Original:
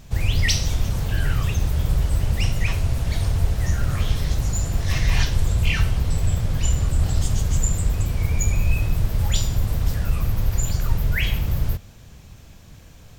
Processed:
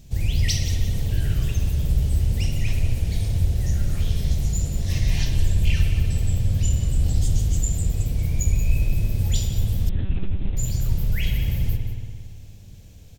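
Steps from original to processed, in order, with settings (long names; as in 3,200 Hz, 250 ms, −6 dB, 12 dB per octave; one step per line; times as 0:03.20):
parametric band 1,200 Hz −15 dB 1.6 octaves
single-tap delay 180 ms −12.5 dB
spring reverb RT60 2 s, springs 57 ms, chirp 70 ms, DRR 3.5 dB
0:09.89–0:10.57: one-pitch LPC vocoder at 8 kHz 190 Hz
level −2 dB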